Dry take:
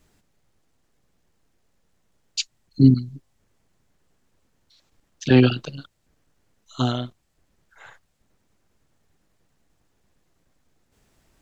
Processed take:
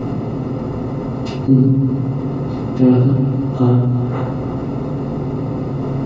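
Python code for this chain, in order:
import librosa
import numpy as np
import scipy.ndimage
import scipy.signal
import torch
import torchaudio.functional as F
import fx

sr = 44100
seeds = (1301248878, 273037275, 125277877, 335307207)

p1 = fx.bin_compress(x, sr, power=0.4)
p2 = scipy.signal.sosfilt(scipy.signal.butter(4, 41.0, 'highpass', fs=sr, output='sos'), p1)
p3 = fx.stretch_vocoder(p2, sr, factor=0.53)
p4 = scipy.signal.savgol_filter(p3, 65, 4, mode='constant')
p5 = p4 + fx.echo_single(p4, sr, ms=326, db=-16.0, dry=0)
p6 = fx.room_shoebox(p5, sr, seeds[0], volume_m3=77.0, walls='mixed', distance_m=2.0)
p7 = fx.env_flatten(p6, sr, amount_pct=50)
y = F.gain(torch.from_numpy(p7), -6.5).numpy()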